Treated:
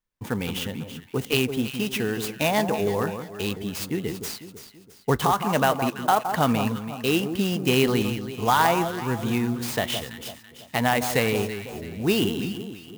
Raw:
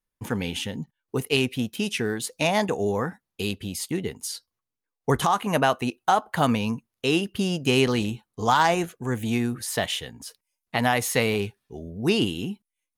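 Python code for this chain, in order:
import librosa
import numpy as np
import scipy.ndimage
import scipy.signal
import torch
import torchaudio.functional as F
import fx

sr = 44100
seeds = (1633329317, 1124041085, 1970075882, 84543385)

p1 = x + fx.echo_alternate(x, sr, ms=166, hz=1300.0, feedback_pct=63, wet_db=-7.5, dry=0)
y = fx.clock_jitter(p1, sr, seeds[0], jitter_ms=0.024)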